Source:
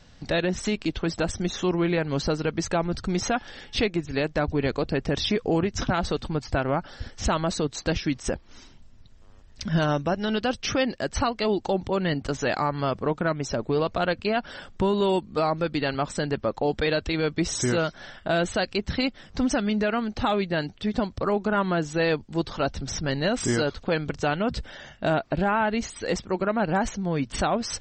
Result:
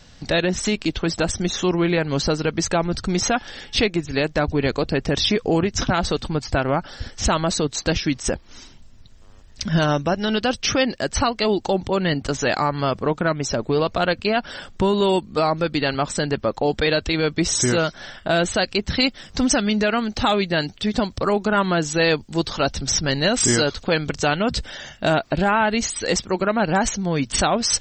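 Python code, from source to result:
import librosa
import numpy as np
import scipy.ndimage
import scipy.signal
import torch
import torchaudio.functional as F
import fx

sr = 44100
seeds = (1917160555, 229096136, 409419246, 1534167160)

y = fx.high_shelf(x, sr, hz=3500.0, db=fx.steps((0.0, 6.0), (18.93, 11.5)))
y = y * 10.0 ** (4.0 / 20.0)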